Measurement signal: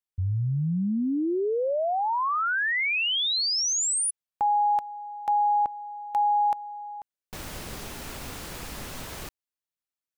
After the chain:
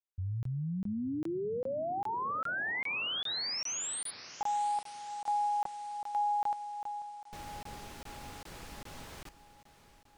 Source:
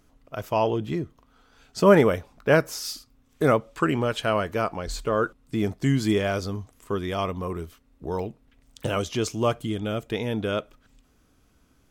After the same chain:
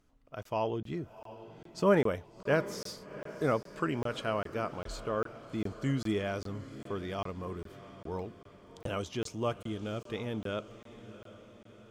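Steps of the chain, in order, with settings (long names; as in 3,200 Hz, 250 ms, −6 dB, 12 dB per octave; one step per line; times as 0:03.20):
high-shelf EQ 11,000 Hz −9.5 dB
on a send: feedback delay with all-pass diffusion 722 ms, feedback 55%, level −15 dB
on the sum: regular buffer underruns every 0.40 s, samples 1,024, zero, from 0:00.43
level −9 dB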